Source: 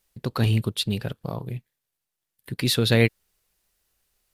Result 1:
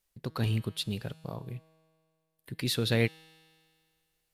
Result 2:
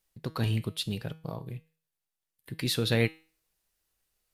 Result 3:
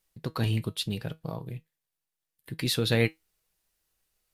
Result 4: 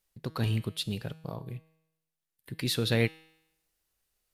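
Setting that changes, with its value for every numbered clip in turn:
resonator, decay: 2.1, 0.4, 0.16, 0.85 s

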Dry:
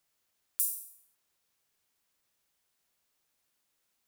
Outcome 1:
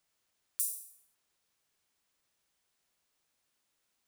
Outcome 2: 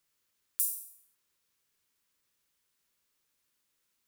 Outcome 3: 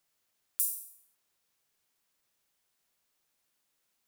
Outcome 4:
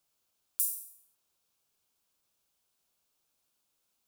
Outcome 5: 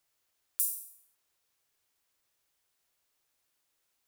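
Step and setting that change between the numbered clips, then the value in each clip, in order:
bell, frequency: 15000, 720, 65, 1900, 200 Hz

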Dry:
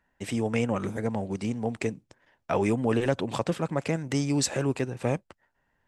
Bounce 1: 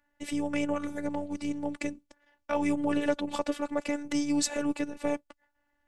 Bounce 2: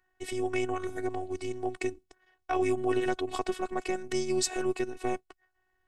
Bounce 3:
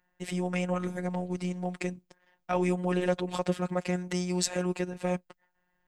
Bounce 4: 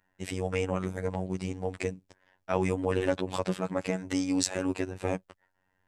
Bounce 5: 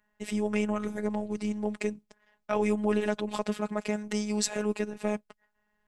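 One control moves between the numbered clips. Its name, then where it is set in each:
robotiser, frequency: 290, 370, 180, 93, 210 Hz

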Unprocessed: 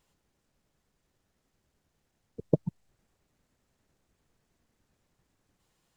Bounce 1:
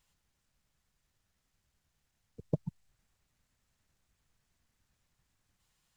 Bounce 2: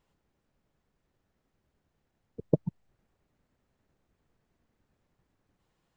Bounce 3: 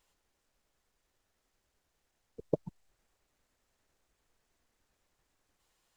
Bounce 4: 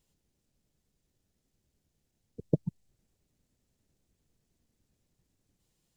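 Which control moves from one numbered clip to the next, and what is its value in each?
bell, frequency: 380, 11000, 150, 1200 Hz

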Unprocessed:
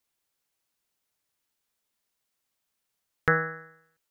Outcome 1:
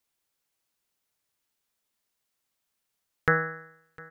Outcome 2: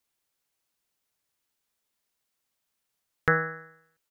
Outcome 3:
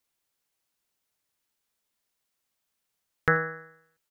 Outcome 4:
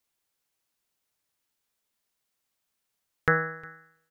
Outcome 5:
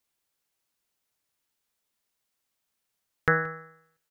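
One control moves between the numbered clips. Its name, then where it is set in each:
echo, time: 705, 1183, 85, 358, 176 ms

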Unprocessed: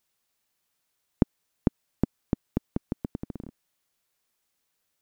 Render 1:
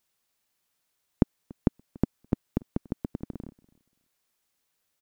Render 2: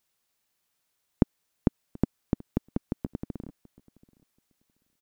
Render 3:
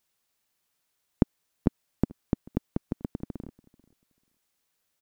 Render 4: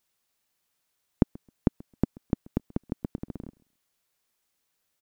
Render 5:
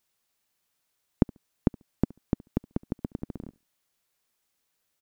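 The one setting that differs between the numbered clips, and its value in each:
feedback echo, time: 287, 732, 439, 133, 70 ms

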